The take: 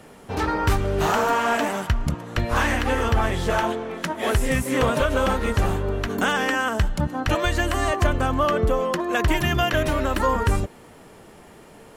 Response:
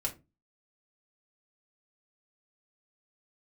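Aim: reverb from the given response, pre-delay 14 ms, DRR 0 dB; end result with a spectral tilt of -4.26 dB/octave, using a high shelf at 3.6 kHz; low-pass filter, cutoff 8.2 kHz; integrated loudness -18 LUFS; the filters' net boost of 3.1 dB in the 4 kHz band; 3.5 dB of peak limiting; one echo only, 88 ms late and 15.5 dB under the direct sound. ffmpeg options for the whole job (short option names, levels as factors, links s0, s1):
-filter_complex "[0:a]lowpass=8200,highshelf=f=3600:g=-4.5,equalizer=f=4000:t=o:g=7.5,alimiter=limit=0.211:level=0:latency=1,aecho=1:1:88:0.168,asplit=2[s0][s1];[1:a]atrim=start_sample=2205,adelay=14[s2];[s1][s2]afir=irnorm=-1:irlink=0,volume=0.708[s3];[s0][s3]amix=inputs=2:normalize=0,volume=1.33"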